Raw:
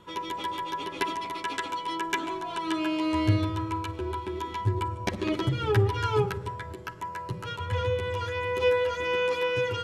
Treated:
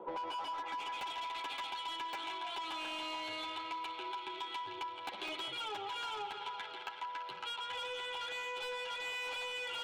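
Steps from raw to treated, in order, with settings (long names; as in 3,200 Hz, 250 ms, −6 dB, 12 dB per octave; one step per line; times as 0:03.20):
in parallel at +1.5 dB: brickwall limiter −20 dBFS, peak gain reduction 7 dB
on the sum: band-pass filter sweep 500 Hz → 3,700 Hz, 0:00.05–0:01.00
on a send: feedback echo with a high-pass in the loop 168 ms, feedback 73%, high-pass 370 Hz, level −11 dB
on the sum: wave folding −31 dBFS
three-way crossover with the lows and the highs turned down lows −15 dB, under 190 Hz, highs −18 dB, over 3,100 Hz
notch filter 1,800 Hz, Q 5.4
soft clipping −38.5 dBFS, distortion −14 dB
parametric band 800 Hz +12.5 dB 0.35 octaves
downward compressor, threshold −44 dBFS, peak gain reduction 8.5 dB
level +6 dB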